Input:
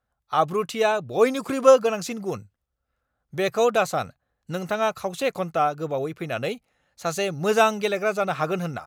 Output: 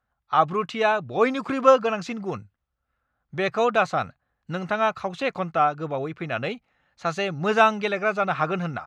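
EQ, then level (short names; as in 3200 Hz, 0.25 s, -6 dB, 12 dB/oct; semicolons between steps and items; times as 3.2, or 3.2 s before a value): tape spacing loss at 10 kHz 29 dB; low shelf 260 Hz -9.5 dB; bell 490 Hz -8.5 dB 1.4 oct; +9.0 dB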